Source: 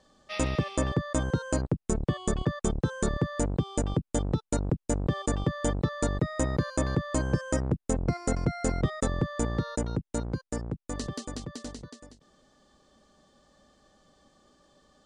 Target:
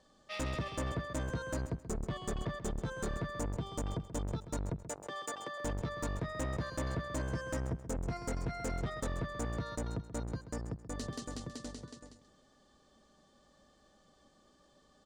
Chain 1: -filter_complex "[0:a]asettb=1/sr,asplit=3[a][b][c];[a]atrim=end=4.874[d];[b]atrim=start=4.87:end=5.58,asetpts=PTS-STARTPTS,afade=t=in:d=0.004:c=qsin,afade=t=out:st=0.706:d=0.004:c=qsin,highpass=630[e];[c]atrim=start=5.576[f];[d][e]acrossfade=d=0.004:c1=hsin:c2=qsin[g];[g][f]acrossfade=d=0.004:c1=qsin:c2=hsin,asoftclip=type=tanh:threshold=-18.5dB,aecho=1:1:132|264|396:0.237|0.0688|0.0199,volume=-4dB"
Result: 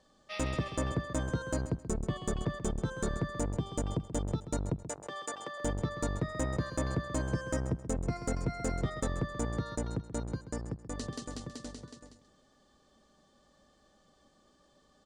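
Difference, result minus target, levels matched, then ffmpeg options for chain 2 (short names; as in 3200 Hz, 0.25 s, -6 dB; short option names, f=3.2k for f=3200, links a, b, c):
soft clip: distortion -10 dB
-filter_complex "[0:a]asettb=1/sr,asplit=3[a][b][c];[a]atrim=end=4.874[d];[b]atrim=start=4.87:end=5.58,asetpts=PTS-STARTPTS,afade=t=in:d=0.004:c=qsin,afade=t=out:st=0.706:d=0.004:c=qsin,highpass=630[e];[c]atrim=start=5.576[f];[d][e]acrossfade=d=0.004:c1=hsin:c2=qsin[g];[g][f]acrossfade=d=0.004:c1=qsin:c2=hsin,asoftclip=type=tanh:threshold=-27.5dB,aecho=1:1:132|264|396:0.237|0.0688|0.0199,volume=-4dB"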